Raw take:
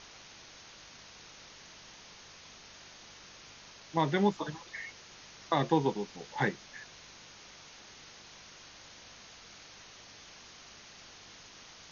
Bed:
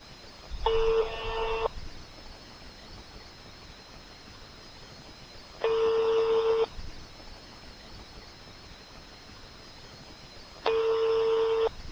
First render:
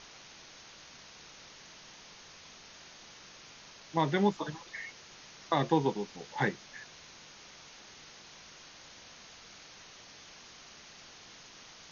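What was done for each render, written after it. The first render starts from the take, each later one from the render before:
hum removal 50 Hz, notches 2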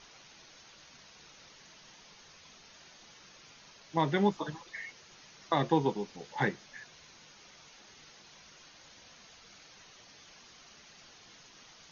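broadband denoise 6 dB, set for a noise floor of −53 dBFS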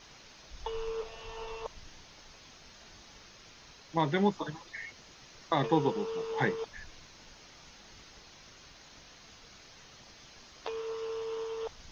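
mix in bed −11.5 dB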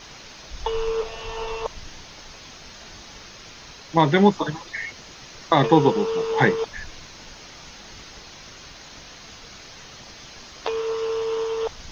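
level +11.5 dB
brickwall limiter −3 dBFS, peak gain reduction 1 dB

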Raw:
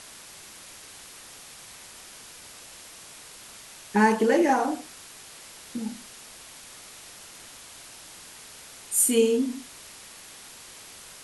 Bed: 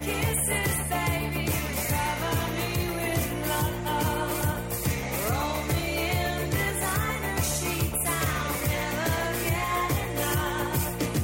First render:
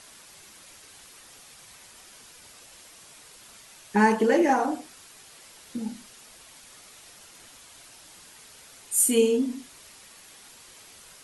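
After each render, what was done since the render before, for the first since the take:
broadband denoise 6 dB, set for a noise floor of −47 dBFS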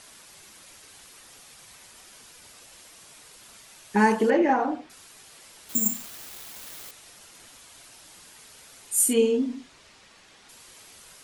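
0:04.30–0:04.90: low-pass filter 3,100 Hz
0:05.69–0:06.91: bad sample-rate conversion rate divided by 6×, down none, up zero stuff
0:09.13–0:10.49: high-frequency loss of the air 89 metres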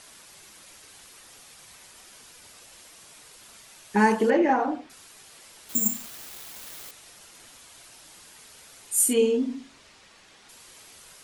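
hum removal 45.71 Hz, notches 6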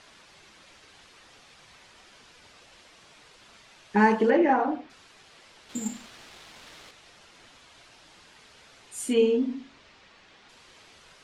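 low-pass filter 4,200 Hz 12 dB per octave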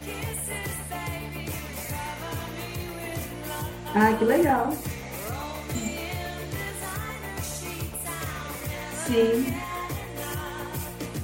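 mix in bed −6 dB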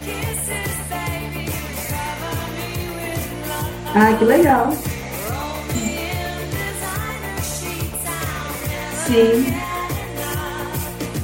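level +8 dB
brickwall limiter −2 dBFS, peak gain reduction 2.5 dB

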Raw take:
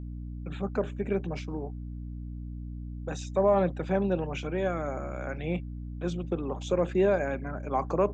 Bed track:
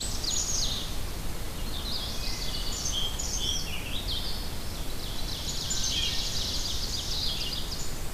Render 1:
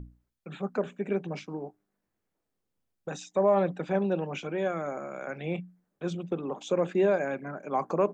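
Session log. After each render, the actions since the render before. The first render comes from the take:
mains-hum notches 60/120/180/240/300 Hz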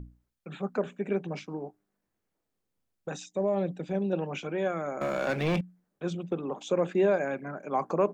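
0:03.26–0:04.13: parametric band 1,200 Hz −12 dB 1.8 octaves
0:05.01–0:05.61: leveller curve on the samples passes 3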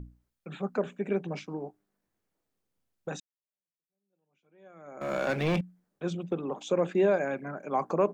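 0:03.20–0:05.13: fade in exponential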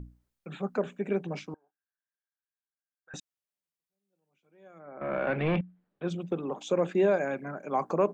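0:01.54–0:03.14: resonant band-pass 1,600 Hz, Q 15
0:04.78–0:06.09: low-pass filter 2,000 Hz → 4,100 Hz 24 dB per octave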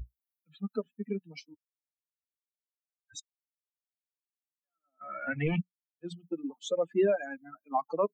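spectral dynamics exaggerated over time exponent 3
in parallel at 0 dB: downward compressor, threshold −37 dBFS, peak gain reduction 13 dB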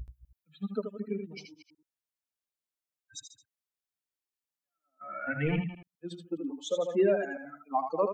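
delay that plays each chunk backwards 125 ms, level −13 dB
on a send: single-tap delay 79 ms −7 dB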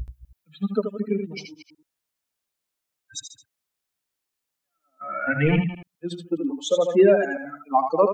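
level +9.5 dB

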